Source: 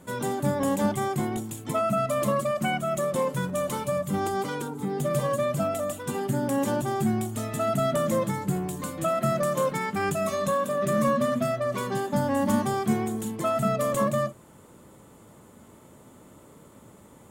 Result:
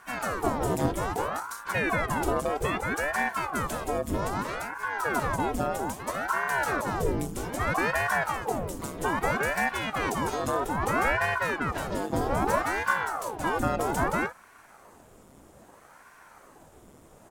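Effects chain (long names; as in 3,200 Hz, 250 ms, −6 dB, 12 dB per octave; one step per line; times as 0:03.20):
pitch-shifted copies added −5 semitones −7 dB, +4 semitones −14 dB
ring modulator whose carrier an LFO sweeps 680 Hz, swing 90%, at 0.62 Hz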